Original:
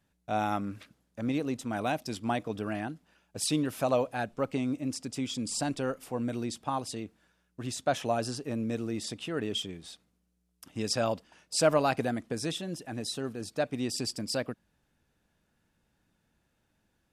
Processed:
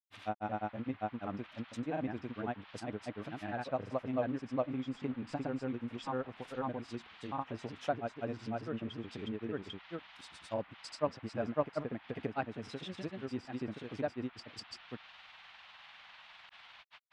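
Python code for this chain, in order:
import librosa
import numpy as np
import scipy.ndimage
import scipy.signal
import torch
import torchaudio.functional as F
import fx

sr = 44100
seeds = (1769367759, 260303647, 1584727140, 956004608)

y = fx.dmg_noise_band(x, sr, seeds[0], low_hz=730.0, high_hz=3600.0, level_db=-50.0)
y = fx.granulator(y, sr, seeds[1], grain_ms=100.0, per_s=20.0, spray_ms=753.0, spread_st=0)
y = fx.env_lowpass_down(y, sr, base_hz=1900.0, full_db=-31.0)
y = y * 10.0 ** (-4.5 / 20.0)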